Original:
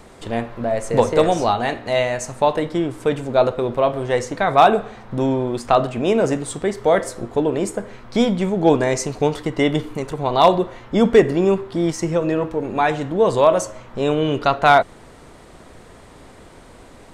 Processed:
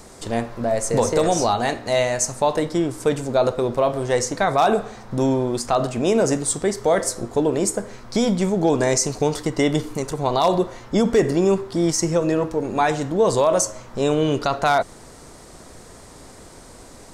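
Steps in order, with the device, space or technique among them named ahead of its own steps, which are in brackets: over-bright horn tweeter (resonant high shelf 4100 Hz +7.5 dB, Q 1.5; limiter -8.5 dBFS, peak gain reduction 6.5 dB)

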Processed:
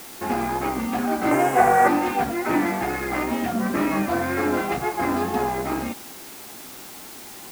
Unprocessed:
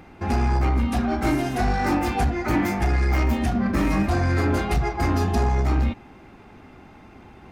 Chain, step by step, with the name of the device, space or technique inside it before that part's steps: wax cylinder (BPF 250–2600 Hz; wow and flutter; white noise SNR 16 dB); 1.31–1.88 graphic EQ 125/250/500/1000/2000/4000/8000 Hz +5/-6/+10/+6/+5/-7/+8 dB; gain +2.5 dB

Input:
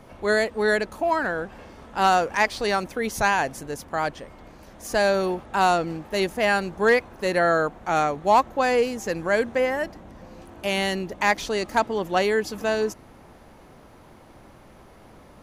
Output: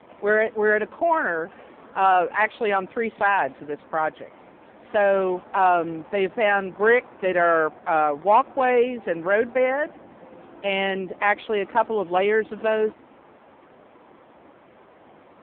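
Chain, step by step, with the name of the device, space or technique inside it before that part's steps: telephone (BPF 250–3600 Hz; soft clip -11 dBFS, distortion -19 dB; gain +3.5 dB; AMR-NB 5.9 kbps 8000 Hz)

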